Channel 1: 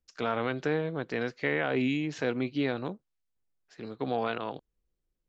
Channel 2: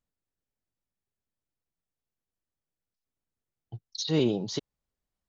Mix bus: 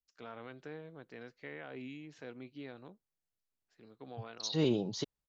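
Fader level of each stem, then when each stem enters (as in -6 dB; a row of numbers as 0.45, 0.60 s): -17.5, -5.0 dB; 0.00, 0.45 s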